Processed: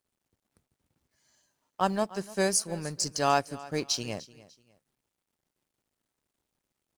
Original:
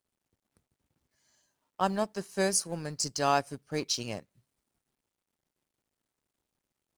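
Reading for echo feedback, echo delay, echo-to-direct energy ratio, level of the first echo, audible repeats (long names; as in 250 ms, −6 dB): 30%, 297 ms, −19.0 dB, −19.5 dB, 2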